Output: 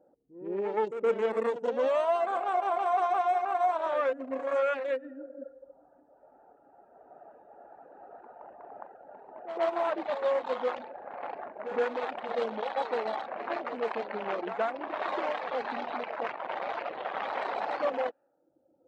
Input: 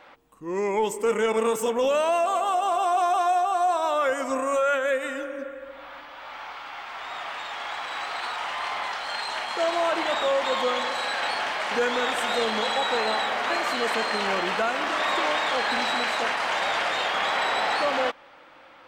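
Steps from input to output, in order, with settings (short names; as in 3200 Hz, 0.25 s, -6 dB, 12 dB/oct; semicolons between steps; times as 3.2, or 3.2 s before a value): Wiener smoothing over 41 samples; band-pass 770 Hz, Q 0.55; low-pass opened by the level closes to 530 Hz, open at -24.5 dBFS; reverb removal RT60 0.97 s; on a send: reverse echo 0.119 s -11 dB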